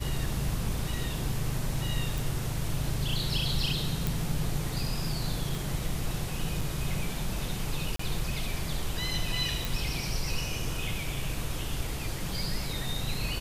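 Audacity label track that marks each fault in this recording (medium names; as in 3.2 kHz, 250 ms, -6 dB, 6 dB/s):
2.180000	2.180000	pop
4.070000	4.070000	pop
5.550000	5.550000	pop
6.610000	6.610000	dropout 4.7 ms
7.960000	7.990000	dropout 34 ms
9.650000	9.650000	pop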